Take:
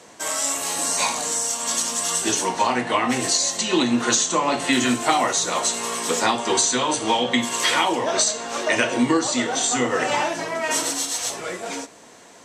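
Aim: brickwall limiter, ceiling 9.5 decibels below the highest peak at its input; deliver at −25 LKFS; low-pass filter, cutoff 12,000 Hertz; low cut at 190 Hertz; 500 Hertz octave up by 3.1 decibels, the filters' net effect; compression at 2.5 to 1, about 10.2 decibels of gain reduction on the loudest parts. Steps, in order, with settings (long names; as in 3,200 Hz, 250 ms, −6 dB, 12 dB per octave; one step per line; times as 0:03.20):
high-pass filter 190 Hz
low-pass filter 12,000 Hz
parametric band 500 Hz +4 dB
downward compressor 2.5 to 1, threshold −30 dBFS
level +7.5 dB
brickwall limiter −17 dBFS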